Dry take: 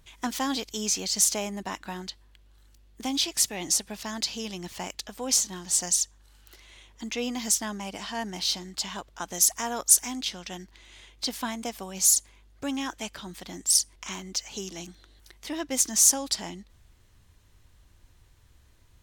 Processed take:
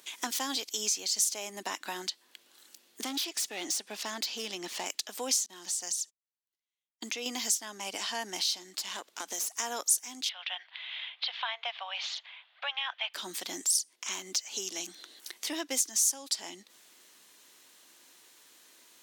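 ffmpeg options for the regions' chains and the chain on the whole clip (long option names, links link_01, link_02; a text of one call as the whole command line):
ffmpeg -i in.wav -filter_complex "[0:a]asettb=1/sr,asplit=3[link_01][link_02][link_03];[link_01]atrim=end=3.044[link_04];[link_02]atrim=start=3.04:end=4.86,asetpts=PTS-STARTPTS,afade=type=in:duration=0.004:curve=qsin,afade=type=out:start_time=1.816:duration=0.004:curve=qsin,lowpass=frequency=3600:poles=1,asoftclip=type=hard:threshold=-30.5dB[link_05];[link_03]atrim=start=4.856[link_06];[link_04][link_05]acrossfade=duration=0.004:curve1=hsin:curve2=qsin[link_07];[link_07][link_06]acrossfade=duration=0.004:curve1=qsin:curve2=hsin,asettb=1/sr,asplit=3[link_08][link_09][link_10];[link_08]atrim=end=5.464[link_11];[link_09]atrim=start=5.46:end=7.26,asetpts=PTS-STARTPTS,afade=type=in:duration=0.004:curve=qsin,afade=type=out:start_time=1.796:duration=0.004:curve=qsin,agate=range=-52dB:threshold=-45dB:ratio=16:release=100:detection=peak,acompressor=threshold=-37dB:ratio=2.5:attack=3.2:release=140:knee=1:detection=peak[link_12];[link_10]atrim=start=7.256[link_13];[link_11][link_12]acrossfade=duration=0.004:curve1=hsin:curve2=qsin[link_14];[link_14][link_13]acrossfade=duration=0.004:curve1=qsin:curve2=hsin,asettb=1/sr,asplit=3[link_15][link_16][link_17];[link_15]atrim=end=8.784[link_18];[link_16]atrim=start=8.78:end=9.59,asetpts=PTS-STARTPTS,afade=type=in:duration=0.004:curve=qsin,afade=type=out:start_time=0.806:duration=0.004:curve=qsin,acompressor=threshold=-32dB:ratio=3:attack=3.2:release=140:knee=1:detection=peak,aeval=exprs='(tanh(35.5*val(0)+0.7)-tanh(0.7))/35.5':channel_layout=same[link_19];[link_17]atrim=start=9.586[link_20];[link_18][link_19]acrossfade=duration=0.004:curve1=hsin:curve2=qsin[link_21];[link_21][link_20]acrossfade=duration=0.004:curve1=qsin:curve2=hsin,asettb=1/sr,asplit=3[link_22][link_23][link_24];[link_22]atrim=end=10.294[link_25];[link_23]atrim=start=10.29:end=13.14,asetpts=PTS-STARTPTS,afade=type=in:duration=0.004:curve=qsin,afade=type=out:start_time=2.846:duration=0.004:curve=qsin,asuperpass=centerf=1500:order=12:qfactor=0.52,highshelf=frequency=2400:gain=10[link_26];[link_24]atrim=start=13.136[link_27];[link_25][link_26]acrossfade=duration=0.004:curve1=hsin:curve2=qsin[link_28];[link_28][link_27]acrossfade=duration=0.004:curve1=qsin:curve2=hsin,highpass=frequency=270:width=0.5412,highpass=frequency=270:width=1.3066,highshelf=frequency=2300:gain=10,acompressor=threshold=-38dB:ratio=2.5,volume=3dB" out.wav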